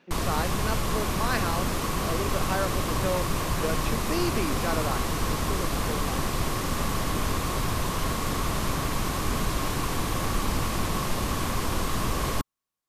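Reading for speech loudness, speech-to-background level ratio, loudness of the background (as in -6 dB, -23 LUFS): -33.5 LUFS, -5.0 dB, -28.5 LUFS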